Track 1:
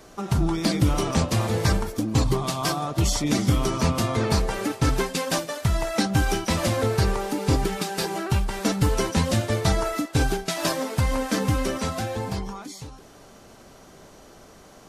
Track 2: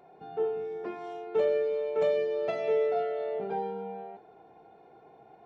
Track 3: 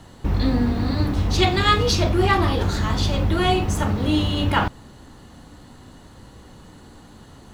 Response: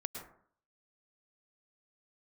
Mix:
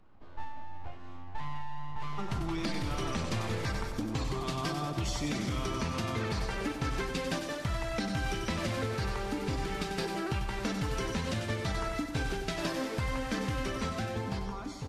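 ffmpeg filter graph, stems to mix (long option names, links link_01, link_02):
-filter_complex "[0:a]highshelf=frequency=4100:gain=-10,adelay=2000,volume=-0.5dB,asplit=2[link_01][link_02];[link_02]volume=-11dB[link_03];[1:a]equalizer=frequency=1000:width_type=o:width=1.4:gain=-12.5,aeval=exprs='abs(val(0))':channel_layout=same,lowshelf=frequency=270:gain=9.5,volume=-3dB[link_04];[link_01][link_04]amix=inputs=2:normalize=0,highshelf=frequency=8700:gain=-11,alimiter=limit=-15.5dB:level=0:latency=1:release=67,volume=0dB[link_05];[link_03]aecho=0:1:94|188|282|376|470|564|658|752:1|0.56|0.314|0.176|0.0983|0.0551|0.0308|0.0173[link_06];[link_05][link_06]amix=inputs=2:normalize=0,acrossover=split=440|1400[link_07][link_08][link_09];[link_07]acompressor=threshold=-33dB:ratio=4[link_10];[link_08]acompressor=threshold=-44dB:ratio=4[link_11];[link_09]acompressor=threshold=-36dB:ratio=4[link_12];[link_10][link_11][link_12]amix=inputs=3:normalize=0"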